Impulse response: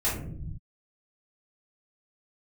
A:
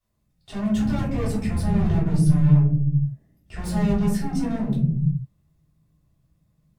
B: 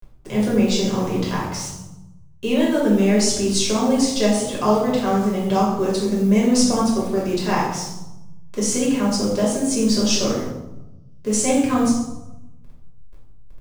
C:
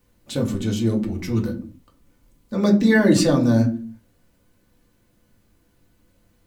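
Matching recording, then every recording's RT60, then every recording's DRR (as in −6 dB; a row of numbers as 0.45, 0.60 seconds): A; non-exponential decay, 0.95 s, non-exponential decay; −11.0, −5.5, −0.5 decibels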